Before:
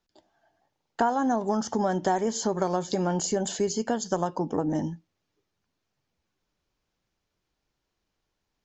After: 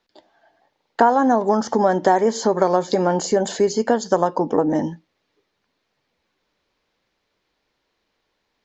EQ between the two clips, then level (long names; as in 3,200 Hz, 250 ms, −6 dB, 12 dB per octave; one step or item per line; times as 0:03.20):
octave-band graphic EQ 250/500/1,000/2,000/4,000 Hz +6/+10/+7/+10/+10 dB
dynamic equaliser 3,100 Hz, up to −7 dB, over −39 dBFS, Q 1.2
−1.0 dB